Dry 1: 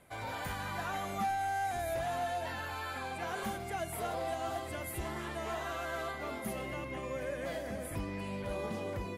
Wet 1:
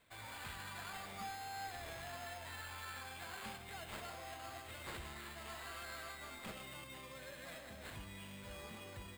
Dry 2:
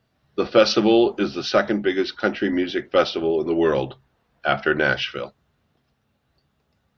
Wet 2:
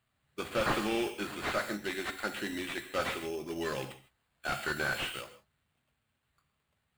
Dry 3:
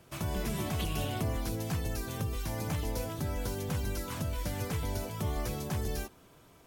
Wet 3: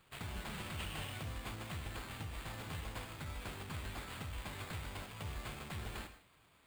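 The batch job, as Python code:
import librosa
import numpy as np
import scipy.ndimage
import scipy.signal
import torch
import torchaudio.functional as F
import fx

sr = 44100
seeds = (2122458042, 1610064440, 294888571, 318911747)

y = fx.tone_stack(x, sr, knobs='5-5-5')
y = fx.sample_hold(y, sr, seeds[0], rate_hz=5800.0, jitter_pct=0)
y = fx.rev_gated(y, sr, seeds[1], gate_ms=180, shape='flat', drr_db=10.0)
y = fx.slew_limit(y, sr, full_power_hz=49.0)
y = y * librosa.db_to_amplitude(3.0)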